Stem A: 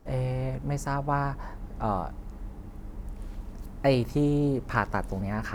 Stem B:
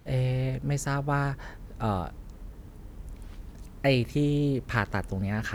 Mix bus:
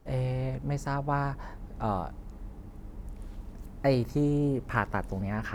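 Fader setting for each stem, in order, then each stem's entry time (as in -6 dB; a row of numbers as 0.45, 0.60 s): -4.0, -13.5 dB; 0.00, 0.00 s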